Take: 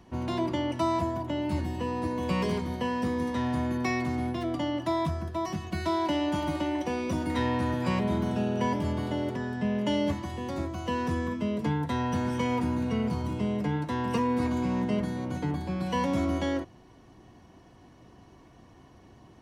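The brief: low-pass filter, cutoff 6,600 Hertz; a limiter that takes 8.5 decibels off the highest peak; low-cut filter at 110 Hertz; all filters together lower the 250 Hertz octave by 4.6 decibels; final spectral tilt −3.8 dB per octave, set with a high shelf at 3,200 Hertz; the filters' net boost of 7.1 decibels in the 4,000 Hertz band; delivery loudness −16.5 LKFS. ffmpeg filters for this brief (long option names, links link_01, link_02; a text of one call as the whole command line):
ffmpeg -i in.wav -af "highpass=110,lowpass=6600,equalizer=frequency=250:width_type=o:gain=-5.5,highshelf=frequency=3200:gain=8,equalizer=frequency=4000:width_type=o:gain=4.5,volume=16.5dB,alimiter=limit=-7dB:level=0:latency=1" out.wav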